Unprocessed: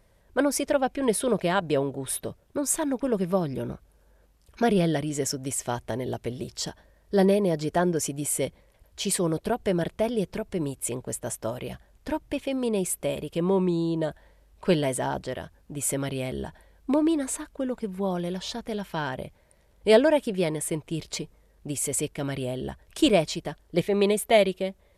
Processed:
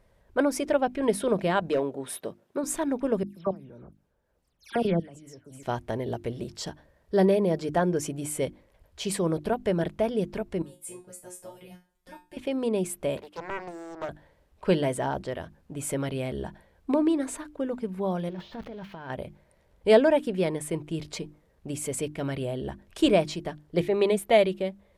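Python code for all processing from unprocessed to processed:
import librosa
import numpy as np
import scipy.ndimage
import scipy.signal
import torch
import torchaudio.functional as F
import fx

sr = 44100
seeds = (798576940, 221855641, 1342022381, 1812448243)

y = fx.chain(x, sr, fx.highpass(hz=210.0, slope=12),
    fx.overload_stage(gain_db=18.5), at=(1.68, 2.64))
y = fx.chain(y, sr, fx.level_steps(step_db=23),
    fx.dispersion(late='lows', ms=136.0, hz=2900.0), at=(3.23, 5.63))
y = fx.chain(y, sr, fx.high_shelf(hz=5300.0, db=11.5),
    fx.comb_fb(f0_hz=180.0, decay_s=0.27, harmonics='all', damping=0.0, mix_pct=100), at=(10.62, 12.37))
y = fx.chain(y, sr, fx.highpass(hz=660.0, slope=12),
    fx.peak_eq(hz=12000.0, db=-7.0, octaves=2.9),
    fx.doppler_dist(depth_ms=0.96), at=(13.17, 14.09))
y = fx.chain(y, sr, fx.crossing_spikes(level_db=-26.5),
    fx.over_compress(threshold_db=-36.0, ratio=-1.0),
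    fx.air_absorb(metres=300.0), at=(18.29, 19.1))
y = fx.high_shelf(y, sr, hz=3800.0, db=-8.0)
y = fx.hum_notches(y, sr, base_hz=50, count=7)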